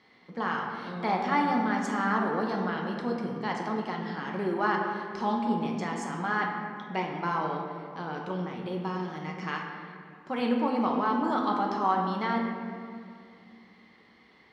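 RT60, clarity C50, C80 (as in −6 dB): 2.3 s, 3.0 dB, 4.0 dB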